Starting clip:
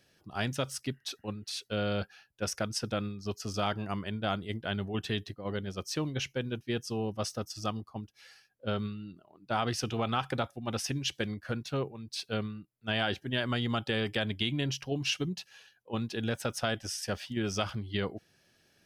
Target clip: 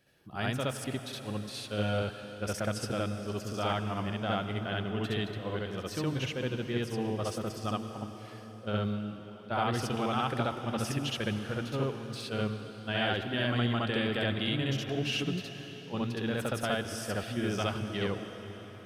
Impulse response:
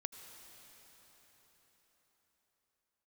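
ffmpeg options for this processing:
-filter_complex "[0:a]equalizer=f=5.6k:w=1.5:g=-8,asplit=2[a][b];[1:a]atrim=start_sample=2205,adelay=67[c];[b][c]afir=irnorm=-1:irlink=0,volume=4.5dB[d];[a][d]amix=inputs=2:normalize=0,volume=-2.5dB"

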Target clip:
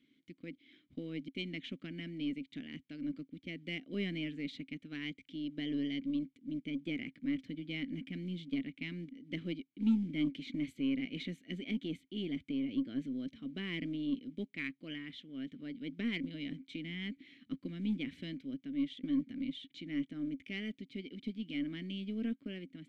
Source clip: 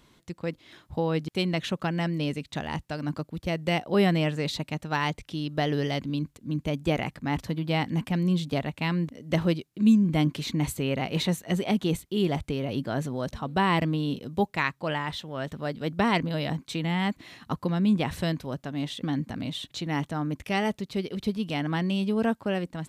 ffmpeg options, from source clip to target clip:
-filter_complex "[0:a]acrusher=bits=8:mode=log:mix=0:aa=0.000001,asplit=3[a][b][c];[a]bandpass=f=270:t=q:w=8,volume=0dB[d];[b]bandpass=f=2.29k:t=q:w=8,volume=-6dB[e];[c]bandpass=f=3.01k:t=q:w=8,volume=-9dB[f];[d][e][f]amix=inputs=3:normalize=0,aeval=exprs='0.0841*(cos(1*acos(clip(val(0)/0.0841,-1,1)))-cos(1*PI/2))+0.000596*(cos(4*acos(clip(val(0)/0.0841,-1,1)))-cos(4*PI/2))+0.00211*(cos(6*acos(clip(val(0)/0.0841,-1,1)))-cos(6*PI/2))':c=same"

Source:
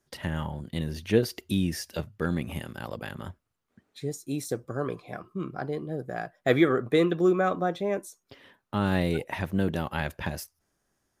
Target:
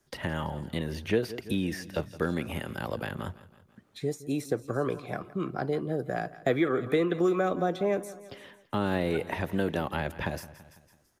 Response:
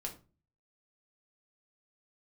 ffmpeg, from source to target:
-filter_complex "[0:a]aecho=1:1:166|332|498|664:0.106|0.054|0.0276|0.0141,acrossover=split=290|620|2700[a][b][c][d];[a]acompressor=threshold=-38dB:ratio=4[e];[b]acompressor=threshold=-31dB:ratio=4[f];[c]acompressor=threshold=-38dB:ratio=4[g];[d]acompressor=threshold=-51dB:ratio=4[h];[e][f][g][h]amix=inputs=4:normalize=0,volume=4dB"

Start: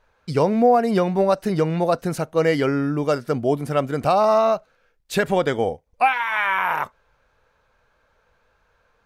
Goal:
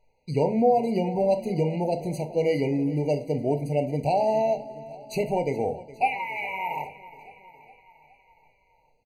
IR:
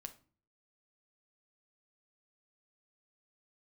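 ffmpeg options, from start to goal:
-filter_complex "[0:a]aecho=1:1:415|830|1245|1660|2075:0.126|0.0755|0.0453|0.0272|0.0163[a];[1:a]atrim=start_sample=2205[b];[a][b]afir=irnorm=-1:irlink=0,afftfilt=real='re*eq(mod(floor(b*sr/1024/980),2),0)':imag='im*eq(mod(floor(b*sr/1024/980),2),0)':win_size=1024:overlap=0.75"

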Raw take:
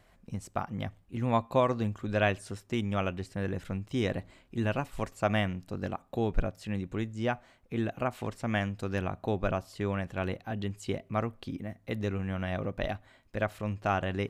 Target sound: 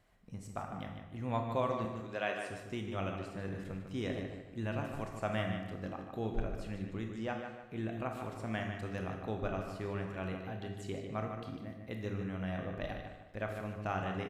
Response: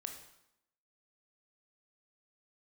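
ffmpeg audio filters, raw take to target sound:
-filter_complex "[0:a]asettb=1/sr,asplit=3[a][b][c];[a]atrim=end=1.854[d];[b]atrim=start=1.85:end=2.49,asetpts=PTS-STARTPTS,afade=t=in:d=0.004:c=qsin,afade=t=out:st=0.636:d=0.004:c=qsin,highpass=340[e];[c]atrim=start=2.486[f];[d][e]acrossfade=d=0.004:c1=hsin:c2=qsin[g];[g][f]acrossfade=d=0.004:c1=qsin:c2=hsin,asplit=2[h][i];[i]adelay=150,lowpass=f=4.2k:p=1,volume=-6.5dB,asplit=2[j][k];[k]adelay=150,lowpass=f=4.2k:p=1,volume=0.37,asplit=2[l][m];[m]adelay=150,lowpass=f=4.2k:p=1,volume=0.37,asplit=2[n][o];[o]adelay=150,lowpass=f=4.2k:p=1,volume=0.37[p];[h][j][l][n][p]amix=inputs=5:normalize=0[q];[1:a]atrim=start_sample=2205[r];[q][r]afir=irnorm=-1:irlink=0,volume=-4.5dB"

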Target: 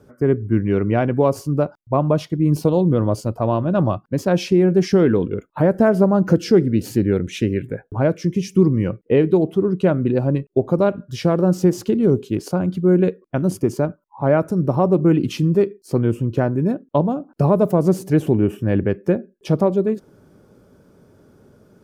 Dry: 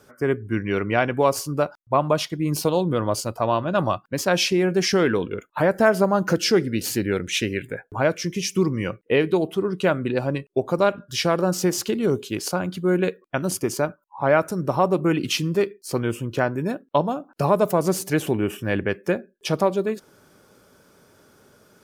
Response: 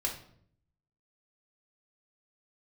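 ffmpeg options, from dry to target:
-af "tiltshelf=f=720:g=9"

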